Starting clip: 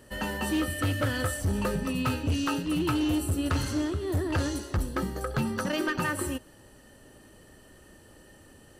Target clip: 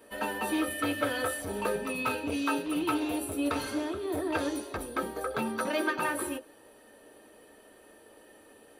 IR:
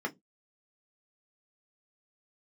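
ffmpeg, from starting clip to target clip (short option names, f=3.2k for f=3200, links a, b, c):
-filter_complex "[0:a]aexciter=amount=4.2:drive=5:freq=8.9k,aeval=exprs='0.126*(abs(mod(val(0)/0.126+3,4)-2)-1)':c=same[a];[1:a]atrim=start_sample=2205,asetrate=83790,aresample=44100[b];[a][b]afir=irnorm=-1:irlink=0"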